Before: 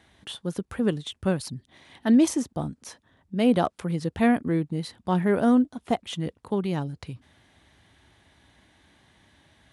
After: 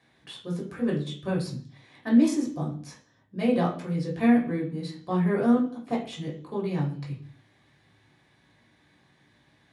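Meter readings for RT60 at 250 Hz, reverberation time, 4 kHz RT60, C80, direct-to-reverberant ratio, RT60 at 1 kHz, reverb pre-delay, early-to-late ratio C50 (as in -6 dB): no reading, 0.50 s, 0.60 s, 12.5 dB, -3.5 dB, 0.45 s, 3 ms, 7.5 dB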